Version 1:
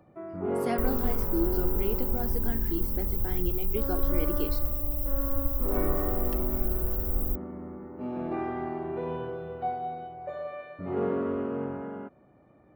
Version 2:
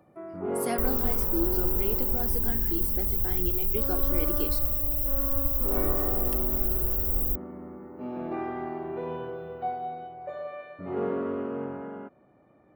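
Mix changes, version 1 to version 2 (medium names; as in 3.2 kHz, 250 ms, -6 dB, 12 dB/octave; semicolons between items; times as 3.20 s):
speech: add peaking EQ 11 kHz +14 dB 1.2 oct; second sound +6.0 dB; master: add bass shelf 120 Hz -8 dB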